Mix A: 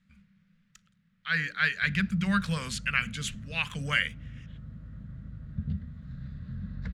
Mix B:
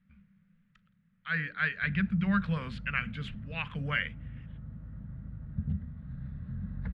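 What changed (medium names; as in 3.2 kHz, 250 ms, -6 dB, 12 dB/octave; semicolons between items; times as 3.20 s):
background: add peaking EQ 840 Hz +8 dB 0.37 oct; master: add distance through air 440 m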